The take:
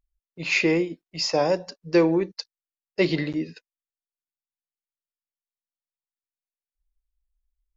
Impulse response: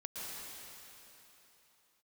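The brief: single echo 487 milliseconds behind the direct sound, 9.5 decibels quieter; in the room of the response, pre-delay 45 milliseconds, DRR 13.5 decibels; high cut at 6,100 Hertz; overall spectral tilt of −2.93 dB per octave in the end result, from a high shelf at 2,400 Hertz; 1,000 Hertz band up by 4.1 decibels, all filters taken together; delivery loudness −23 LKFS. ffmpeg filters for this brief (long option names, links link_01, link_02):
-filter_complex "[0:a]lowpass=6100,equalizer=frequency=1000:width_type=o:gain=4.5,highshelf=frequency=2400:gain=6.5,aecho=1:1:487:0.335,asplit=2[link_01][link_02];[1:a]atrim=start_sample=2205,adelay=45[link_03];[link_02][link_03]afir=irnorm=-1:irlink=0,volume=-14dB[link_04];[link_01][link_04]amix=inputs=2:normalize=0,volume=-0.5dB"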